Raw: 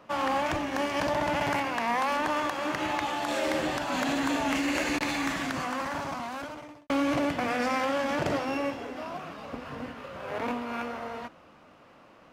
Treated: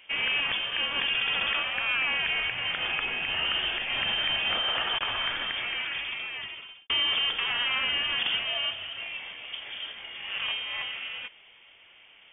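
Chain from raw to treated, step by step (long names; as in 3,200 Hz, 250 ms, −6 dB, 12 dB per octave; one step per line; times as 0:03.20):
voice inversion scrambler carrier 3,400 Hz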